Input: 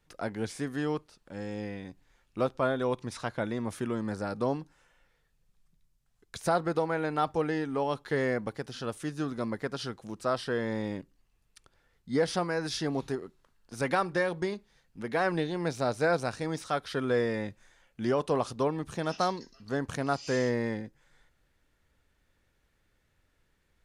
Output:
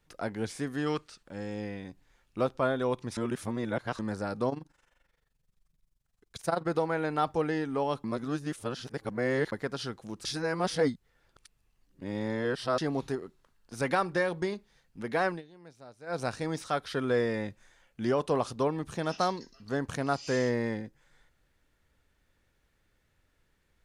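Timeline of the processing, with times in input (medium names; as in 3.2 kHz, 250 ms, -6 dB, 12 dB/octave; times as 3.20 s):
0.86–1.22 s: time-frequency box 1.1–9.4 kHz +8 dB
3.17–3.99 s: reverse
4.49–6.67 s: AM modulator 23 Hz, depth 70%
8.04–9.52 s: reverse
10.25–12.78 s: reverse
15.25–16.23 s: dip -21 dB, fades 0.17 s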